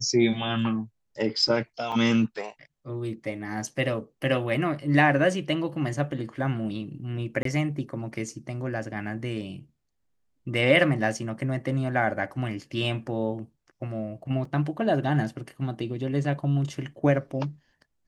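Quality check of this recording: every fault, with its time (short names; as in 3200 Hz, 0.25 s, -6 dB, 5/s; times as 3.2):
1.92 gap 4.6 ms
7.43–7.45 gap 23 ms
14.45 gap 3.5 ms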